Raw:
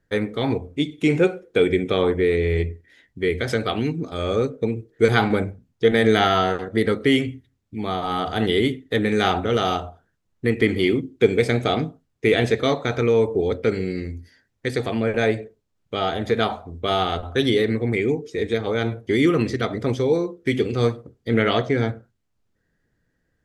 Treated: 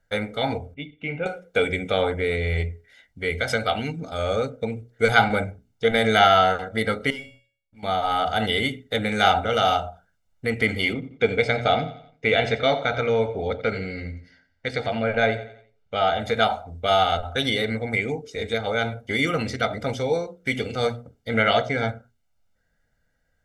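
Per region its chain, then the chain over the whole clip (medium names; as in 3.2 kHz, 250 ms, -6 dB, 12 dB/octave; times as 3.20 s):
0.74–1.26 s: four-pole ladder low-pass 3.1 kHz, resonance 50% + tilt shelf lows +4.5 dB, about 690 Hz
7.10–7.83 s: waveshaping leveller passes 1 + feedback comb 560 Hz, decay 0.5 s, mix 90%
10.93–16.20 s: low-pass 4.4 kHz + feedback delay 88 ms, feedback 43%, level -15.5 dB
whole clip: peaking EQ 130 Hz -7.5 dB 1.9 oct; hum notches 60/120/180/240/300/360/420 Hz; comb 1.4 ms, depth 77%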